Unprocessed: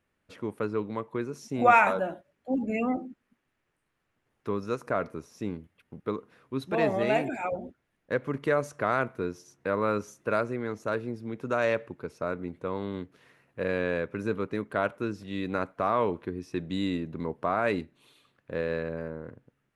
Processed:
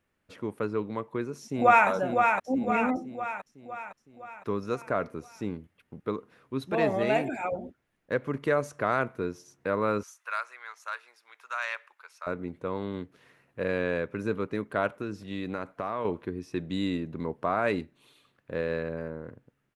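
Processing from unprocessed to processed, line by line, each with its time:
1.42–1.88 s: echo throw 510 ms, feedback 55%, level -4.5 dB
10.03–12.27 s: high-pass 1 kHz 24 dB/octave
14.95–16.05 s: compression 3:1, threshold -29 dBFS

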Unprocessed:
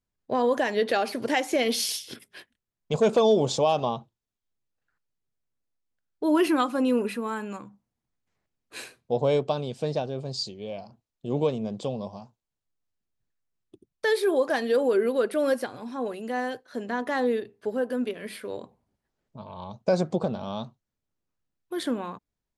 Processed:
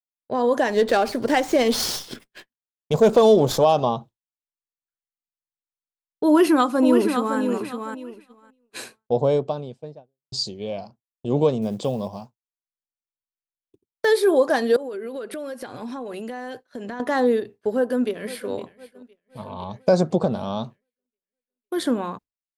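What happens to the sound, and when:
0.70–3.65 s: sliding maximum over 3 samples
6.26–7.38 s: echo throw 560 ms, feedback 25%, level -7 dB
8.80–10.32 s: studio fade out
11.62–14.06 s: short-mantissa float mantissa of 4-bit
14.76–17.00 s: compression 16:1, threshold -34 dBFS
17.74–18.51 s: echo throw 510 ms, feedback 65%, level -16 dB
whole clip: expander -40 dBFS; dynamic bell 2.5 kHz, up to -6 dB, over -47 dBFS, Q 1.5; level rider gain up to 6 dB

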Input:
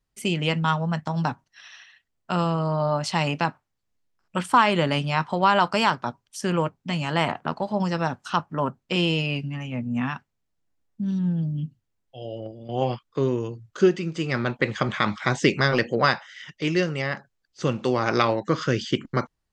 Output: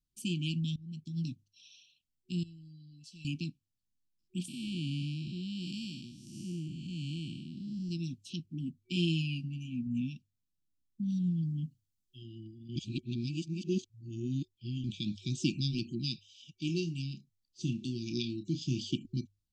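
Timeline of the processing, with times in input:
0.76–1.31 s: fade in, from -21.5 dB
2.43–3.25 s: feedback comb 670 Hz, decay 0.2 s, mix 90%
4.48–7.91 s: spectral blur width 322 ms
8.60–9.87 s: doubling 12 ms -8 dB
11.10–12.22 s: treble shelf 4 kHz +8.5 dB
12.76–14.84 s: reverse
16.66–18.89 s: doubling 30 ms -10 dB
whole clip: hum notches 50/100 Hz; FFT band-reject 370–2300 Hz; high-order bell 1 kHz -11.5 dB 2.9 oct; trim -7 dB

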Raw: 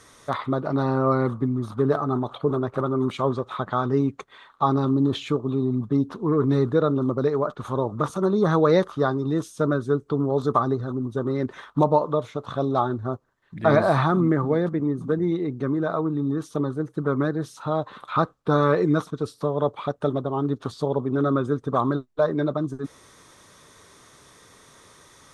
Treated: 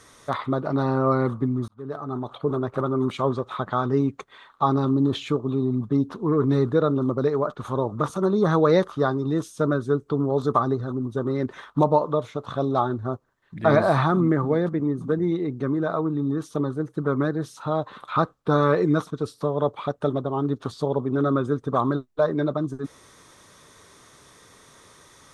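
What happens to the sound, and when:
1.68–2.96 s: fade in equal-power

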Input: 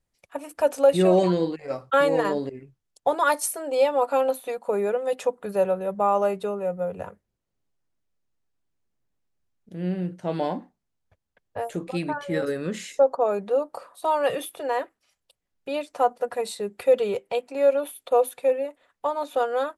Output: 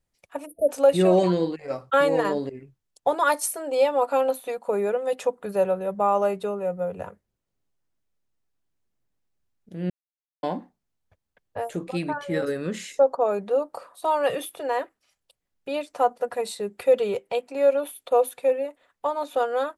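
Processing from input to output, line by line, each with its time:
0.46–0.69 s: spectral selection erased 670–8900 Hz
9.90–10.43 s: mute

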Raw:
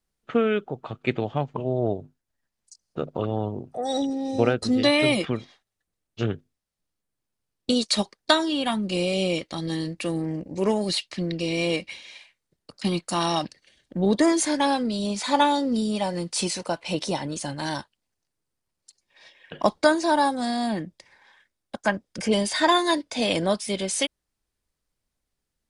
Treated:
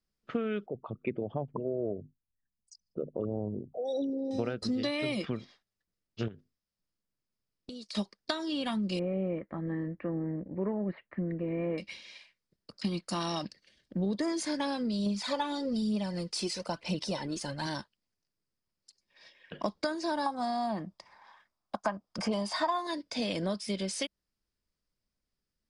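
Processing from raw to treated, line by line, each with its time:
0.66–4.31 s: resonances exaggerated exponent 2
6.28–7.95 s: compression 8:1, threshold -36 dBFS
8.99–11.78 s: elliptic low-pass 1.9 kHz, stop band 80 dB
15.06–17.67 s: phaser 1.1 Hz
20.26–22.87 s: high-order bell 910 Hz +12.5 dB 1.2 oct
whole clip: graphic EQ with 31 bands 200 Hz +5 dB, 800 Hz -5 dB, 5 kHz +9 dB; compression, threshold -23 dBFS; treble shelf 4.9 kHz -7.5 dB; trim -5 dB

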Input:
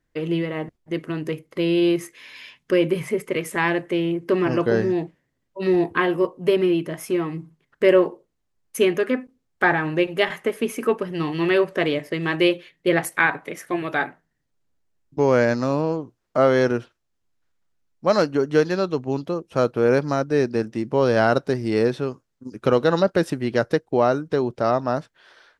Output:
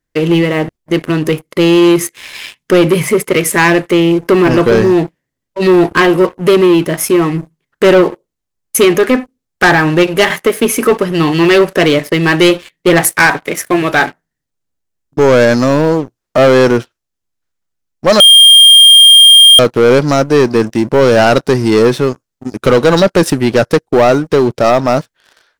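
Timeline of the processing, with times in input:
18.20–19.59 s: bleep 3.21 kHz -7 dBFS
whole clip: treble shelf 4.7 kHz +8 dB; waveshaping leveller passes 3; trim +3 dB

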